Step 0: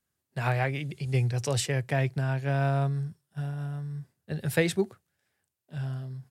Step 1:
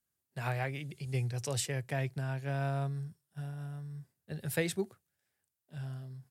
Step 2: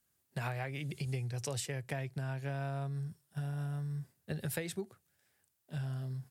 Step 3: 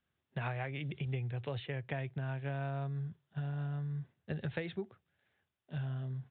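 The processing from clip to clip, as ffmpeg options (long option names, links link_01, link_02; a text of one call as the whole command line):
ffmpeg -i in.wav -af "highshelf=frequency=7400:gain=8.5,volume=-7.5dB" out.wav
ffmpeg -i in.wav -af "acompressor=threshold=-42dB:ratio=10,volume=7.5dB" out.wav
ffmpeg -i in.wav -af "aresample=8000,aresample=44100" out.wav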